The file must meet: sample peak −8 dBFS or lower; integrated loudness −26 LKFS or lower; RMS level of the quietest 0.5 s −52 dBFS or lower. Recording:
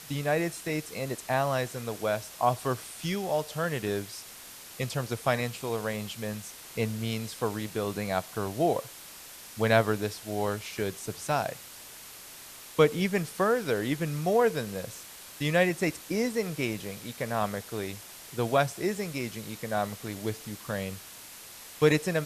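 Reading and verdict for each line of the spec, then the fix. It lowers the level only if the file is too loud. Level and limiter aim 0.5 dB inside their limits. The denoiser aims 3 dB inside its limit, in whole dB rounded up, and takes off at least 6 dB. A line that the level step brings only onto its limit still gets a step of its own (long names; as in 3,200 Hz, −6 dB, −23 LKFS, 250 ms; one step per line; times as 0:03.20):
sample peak −6.5 dBFS: out of spec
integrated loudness −30.0 LKFS: in spec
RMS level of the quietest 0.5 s −47 dBFS: out of spec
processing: broadband denoise 8 dB, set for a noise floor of −47 dBFS
brickwall limiter −8.5 dBFS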